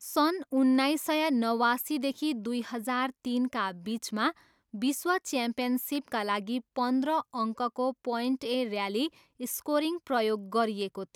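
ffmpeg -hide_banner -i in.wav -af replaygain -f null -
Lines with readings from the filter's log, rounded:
track_gain = +9.7 dB
track_peak = 0.138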